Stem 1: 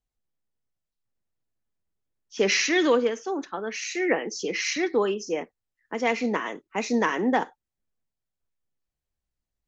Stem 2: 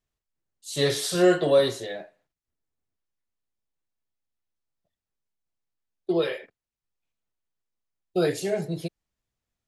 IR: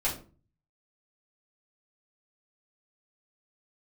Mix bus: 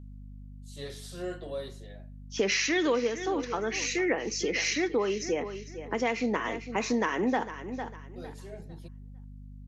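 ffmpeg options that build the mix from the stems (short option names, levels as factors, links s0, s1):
-filter_complex "[0:a]aeval=exprs='val(0)+0.00501*(sin(2*PI*50*n/s)+sin(2*PI*2*50*n/s)/2+sin(2*PI*3*50*n/s)/3+sin(2*PI*4*50*n/s)/4+sin(2*PI*5*50*n/s)/5)':c=same,volume=1.33,asplit=3[s0][s1][s2];[s1]volume=0.158[s3];[1:a]volume=0.133[s4];[s2]apad=whole_len=426860[s5];[s4][s5]sidechaincompress=threshold=0.0178:ratio=3:attack=7.7:release=823[s6];[s3]aecho=0:1:453|906|1359|1812:1|0.26|0.0676|0.0176[s7];[s0][s6][s7]amix=inputs=3:normalize=0,acompressor=threshold=0.0447:ratio=2.5"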